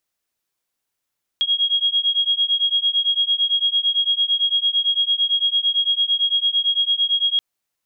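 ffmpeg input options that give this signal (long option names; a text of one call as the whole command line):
ffmpeg -f lavfi -i "aevalsrc='0.106*(sin(2*PI*3280*t)+sin(2*PI*3288.9*t))':duration=5.98:sample_rate=44100" out.wav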